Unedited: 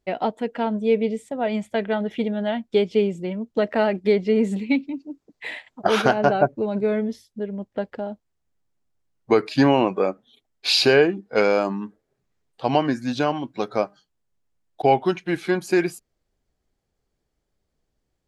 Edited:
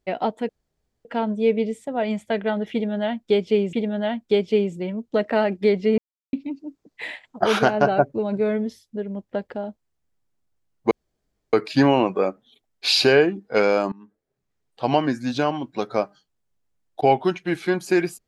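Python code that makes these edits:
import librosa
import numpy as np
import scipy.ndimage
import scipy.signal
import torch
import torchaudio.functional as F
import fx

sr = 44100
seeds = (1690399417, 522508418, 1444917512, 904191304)

y = fx.edit(x, sr, fx.insert_room_tone(at_s=0.49, length_s=0.56),
    fx.repeat(start_s=2.16, length_s=1.01, count=2),
    fx.silence(start_s=4.41, length_s=0.35),
    fx.insert_room_tone(at_s=9.34, length_s=0.62),
    fx.fade_in_from(start_s=11.73, length_s=0.94, floor_db=-21.5), tone=tone)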